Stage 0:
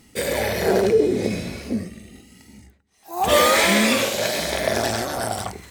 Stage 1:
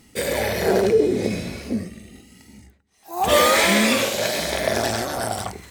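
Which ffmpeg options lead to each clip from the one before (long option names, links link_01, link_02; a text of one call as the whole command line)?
ffmpeg -i in.wav -af anull out.wav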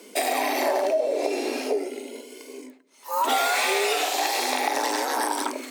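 ffmpeg -i in.wav -af "acompressor=threshold=-28dB:ratio=4,afreqshift=190,volume=5.5dB" out.wav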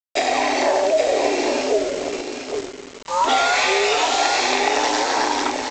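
ffmpeg -i in.wav -af "aresample=16000,acrusher=bits=5:mix=0:aa=0.000001,aresample=44100,aecho=1:1:818:0.447,volume=5dB" out.wav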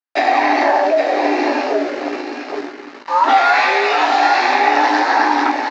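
ffmpeg -i in.wav -filter_complex "[0:a]asoftclip=type=hard:threshold=-11.5dB,highpass=270,equalizer=frequency=290:width_type=q:width=4:gain=8,equalizer=frequency=460:width_type=q:width=4:gain=-6,equalizer=frequency=810:width_type=q:width=4:gain=7,equalizer=frequency=1200:width_type=q:width=4:gain=4,equalizer=frequency=1700:width_type=q:width=4:gain=8,equalizer=frequency=3300:width_type=q:width=4:gain=-7,lowpass=frequency=4500:width=0.5412,lowpass=frequency=4500:width=1.3066,asplit=2[link_01][link_02];[link_02]adelay=17,volume=-7.5dB[link_03];[link_01][link_03]amix=inputs=2:normalize=0,volume=1.5dB" out.wav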